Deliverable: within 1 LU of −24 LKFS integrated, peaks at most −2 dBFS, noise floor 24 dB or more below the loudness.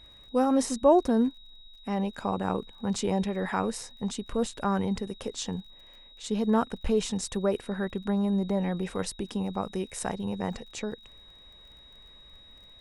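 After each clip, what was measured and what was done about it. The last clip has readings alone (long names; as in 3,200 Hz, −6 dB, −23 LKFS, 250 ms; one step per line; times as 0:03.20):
crackle rate 27 per second; interfering tone 3,800 Hz; level of the tone −51 dBFS; integrated loudness −29.5 LKFS; sample peak −10.5 dBFS; target loudness −24.0 LKFS
→ click removal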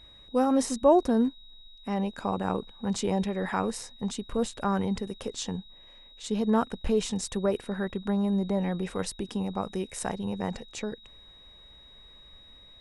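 crackle rate 0 per second; interfering tone 3,800 Hz; level of the tone −51 dBFS
→ notch filter 3,800 Hz, Q 30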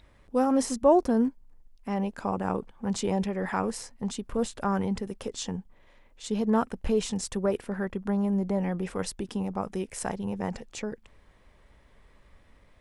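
interfering tone none found; integrated loudness −29.5 LKFS; sample peak −10.5 dBFS; target loudness −24.0 LKFS
→ level +5.5 dB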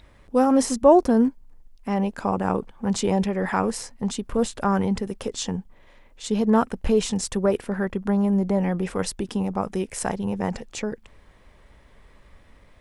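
integrated loudness −24.0 LKFS; sample peak −5.0 dBFS; background noise floor −54 dBFS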